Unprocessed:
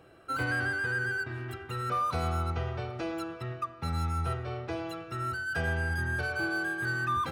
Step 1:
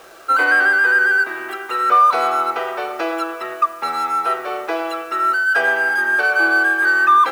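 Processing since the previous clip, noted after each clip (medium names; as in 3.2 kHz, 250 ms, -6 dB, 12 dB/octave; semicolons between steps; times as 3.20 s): high-pass 330 Hz 24 dB/octave; peaking EQ 1.2 kHz +9.5 dB 2.6 oct; bit crusher 9-bit; trim +8.5 dB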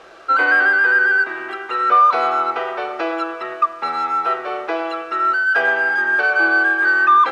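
low-pass 4.4 kHz 12 dB/octave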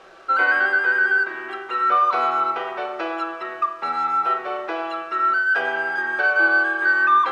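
reverberation RT60 0.60 s, pre-delay 5 ms, DRR 7 dB; trim -4.5 dB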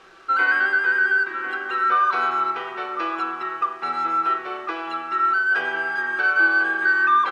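peaking EQ 610 Hz -11.5 dB 0.67 oct; echo from a far wall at 180 m, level -7 dB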